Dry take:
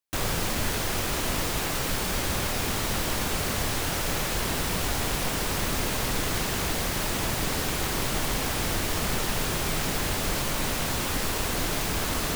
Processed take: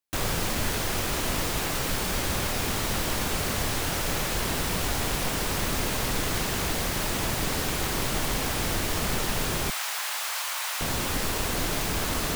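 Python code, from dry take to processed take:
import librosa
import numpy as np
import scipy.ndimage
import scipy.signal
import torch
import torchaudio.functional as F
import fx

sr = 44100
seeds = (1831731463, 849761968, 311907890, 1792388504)

y = fx.highpass(x, sr, hz=820.0, slope=24, at=(9.7, 10.81))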